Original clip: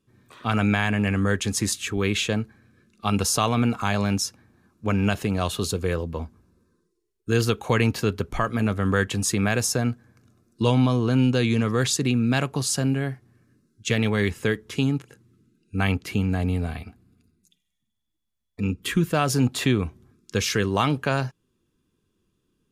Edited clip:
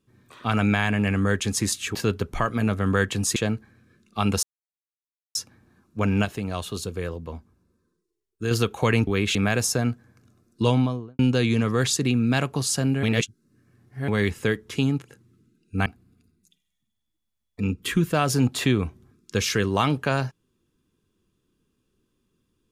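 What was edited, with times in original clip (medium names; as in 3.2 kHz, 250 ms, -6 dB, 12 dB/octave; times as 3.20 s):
1.95–2.23 s: swap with 7.94–9.35 s
3.30–4.22 s: mute
5.12–7.38 s: gain -5 dB
10.66–11.19 s: studio fade out
13.03–14.08 s: reverse
15.86–16.86 s: delete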